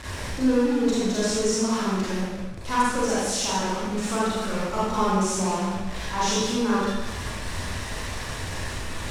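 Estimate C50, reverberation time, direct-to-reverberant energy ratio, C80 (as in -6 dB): -4.5 dB, 1.2 s, -9.5 dB, -0.5 dB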